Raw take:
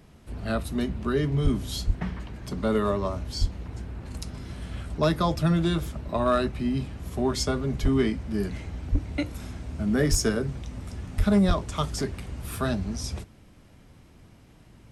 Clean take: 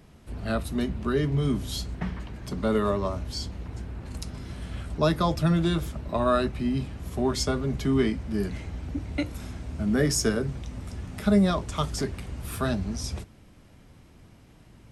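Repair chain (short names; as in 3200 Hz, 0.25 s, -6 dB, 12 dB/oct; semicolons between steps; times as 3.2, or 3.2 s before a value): clip repair -14 dBFS; de-plosive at 1.43/1.86/3.4/7.82/8.91/10.1/11.17/11.47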